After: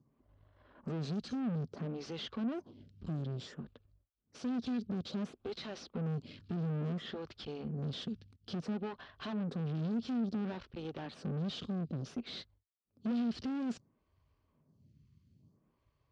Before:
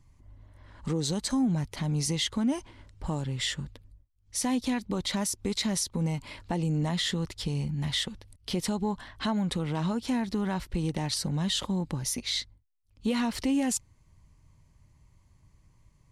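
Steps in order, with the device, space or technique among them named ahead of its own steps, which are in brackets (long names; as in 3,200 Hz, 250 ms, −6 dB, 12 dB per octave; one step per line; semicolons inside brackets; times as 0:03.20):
parametric band 2,200 Hz −4.5 dB 1.1 octaves
vibe pedal into a guitar amplifier (phaser with staggered stages 0.58 Hz; tube saturation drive 41 dB, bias 0.8; loudspeaker in its box 95–4,400 Hz, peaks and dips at 160 Hz +4 dB, 230 Hz +7 dB, 420 Hz +4 dB, 920 Hz −8 dB, 2,000 Hz −7 dB, 3,900 Hz −3 dB)
level +3.5 dB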